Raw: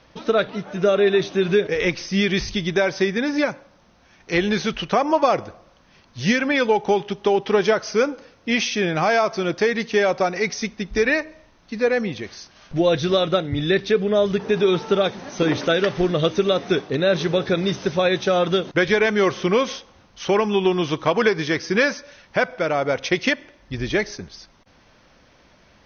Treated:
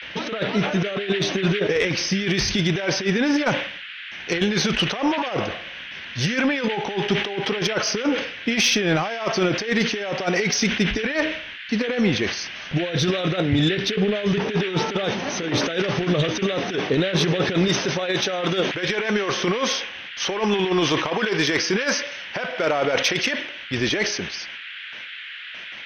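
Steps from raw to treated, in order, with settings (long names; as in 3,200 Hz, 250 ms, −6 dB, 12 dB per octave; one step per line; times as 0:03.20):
high-pass filter 110 Hz 6 dB per octave, from 0:17.68 350 Hz
noise gate with hold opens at −45 dBFS
compressor whose output falls as the input rises −24 dBFS, ratio −0.5
noise in a band 1,500–3,300 Hz −40 dBFS
soft clipping −13 dBFS, distortion −23 dB
level that may fall only so fast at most 75 dB per second
level +3.5 dB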